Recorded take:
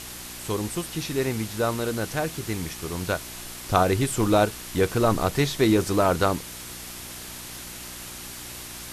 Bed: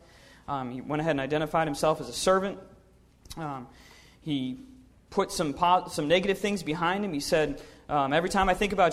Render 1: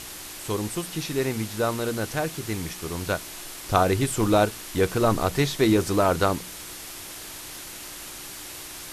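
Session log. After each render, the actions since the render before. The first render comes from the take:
hum removal 60 Hz, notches 4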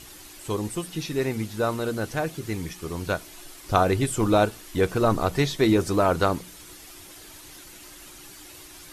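broadband denoise 9 dB, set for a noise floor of −39 dBFS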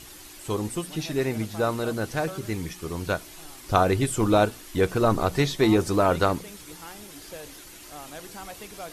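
mix in bed −17 dB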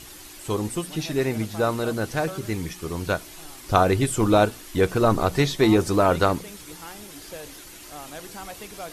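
level +2 dB

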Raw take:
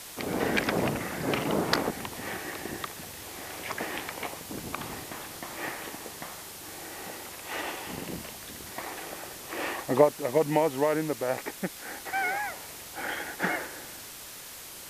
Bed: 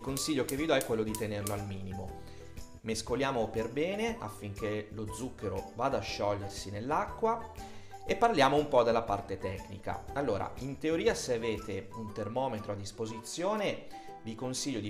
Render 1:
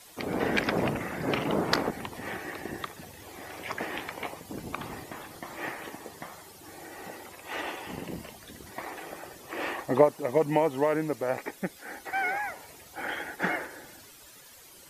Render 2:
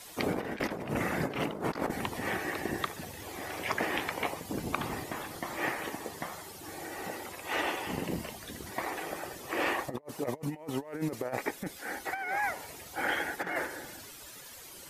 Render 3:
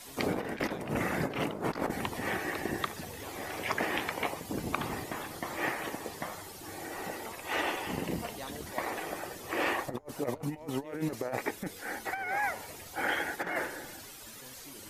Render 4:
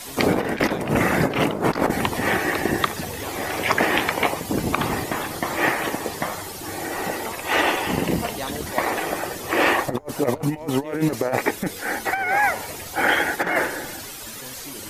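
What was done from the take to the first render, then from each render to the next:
broadband denoise 12 dB, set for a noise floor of −44 dBFS
compressor whose output falls as the input rises −32 dBFS, ratio −0.5
mix in bed −18.5 dB
level +12 dB; brickwall limiter −3 dBFS, peak gain reduction 3 dB

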